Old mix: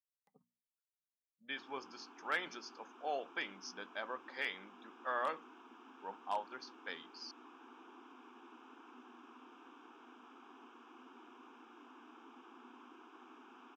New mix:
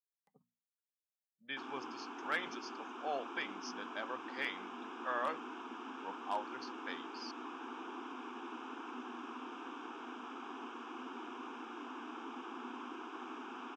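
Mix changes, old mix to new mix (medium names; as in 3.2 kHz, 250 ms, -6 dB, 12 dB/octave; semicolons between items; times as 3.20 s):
speech: add peaking EQ 130 Hz +7.5 dB 0.29 oct; background +11.5 dB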